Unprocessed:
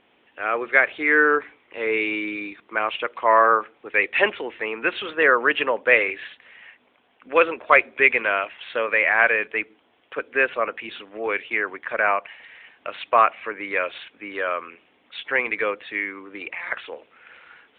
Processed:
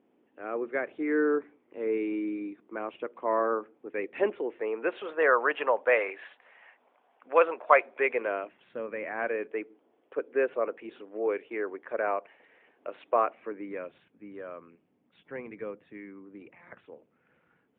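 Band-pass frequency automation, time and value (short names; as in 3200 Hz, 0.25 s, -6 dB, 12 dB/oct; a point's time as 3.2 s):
band-pass, Q 1.4
4.08 s 280 Hz
5.32 s 750 Hz
7.93 s 750 Hz
8.76 s 180 Hz
9.57 s 390 Hz
13.23 s 390 Hz
14.01 s 160 Hz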